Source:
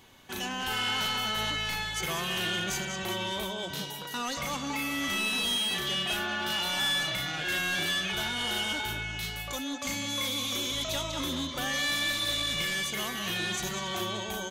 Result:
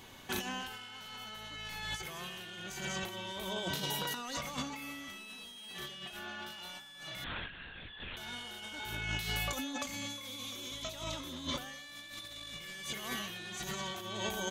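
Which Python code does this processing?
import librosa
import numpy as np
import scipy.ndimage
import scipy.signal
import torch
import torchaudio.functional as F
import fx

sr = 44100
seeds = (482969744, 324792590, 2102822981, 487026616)

y = fx.over_compress(x, sr, threshold_db=-37.0, ratio=-0.5)
y = fx.lpc_vocoder(y, sr, seeds[0], excitation='whisper', order=8, at=(7.24, 8.17))
y = y * 10.0 ** (-3.0 / 20.0)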